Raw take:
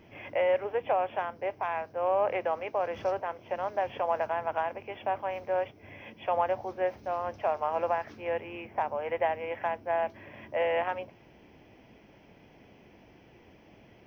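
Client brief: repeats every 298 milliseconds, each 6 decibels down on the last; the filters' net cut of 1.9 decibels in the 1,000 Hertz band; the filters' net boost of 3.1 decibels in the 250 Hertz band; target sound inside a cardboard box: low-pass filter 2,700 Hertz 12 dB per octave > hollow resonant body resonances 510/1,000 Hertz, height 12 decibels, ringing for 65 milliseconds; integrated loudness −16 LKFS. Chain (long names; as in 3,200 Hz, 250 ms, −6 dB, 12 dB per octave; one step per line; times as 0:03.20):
low-pass filter 2,700 Hz 12 dB per octave
parametric band 250 Hz +5 dB
parametric band 1,000 Hz −3 dB
repeating echo 298 ms, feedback 50%, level −6 dB
hollow resonant body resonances 510/1,000 Hz, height 12 dB, ringing for 65 ms
level +9.5 dB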